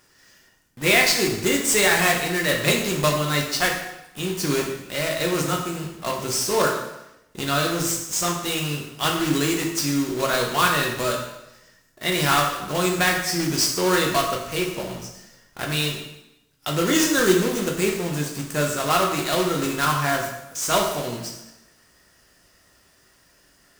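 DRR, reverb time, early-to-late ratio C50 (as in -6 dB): 0.0 dB, 0.90 s, 5.0 dB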